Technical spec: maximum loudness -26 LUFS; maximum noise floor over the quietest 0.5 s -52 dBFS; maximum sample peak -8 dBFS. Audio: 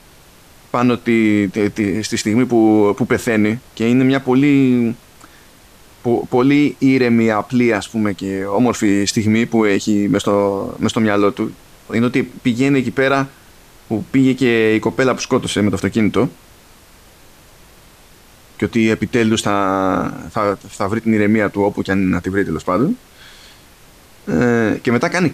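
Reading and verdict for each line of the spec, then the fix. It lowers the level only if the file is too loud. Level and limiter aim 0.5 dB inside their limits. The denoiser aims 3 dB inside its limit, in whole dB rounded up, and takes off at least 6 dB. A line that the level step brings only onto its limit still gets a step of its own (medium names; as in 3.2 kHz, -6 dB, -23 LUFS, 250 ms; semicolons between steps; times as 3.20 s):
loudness -16.5 LUFS: fail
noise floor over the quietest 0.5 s -45 dBFS: fail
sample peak -4.0 dBFS: fail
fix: trim -10 dB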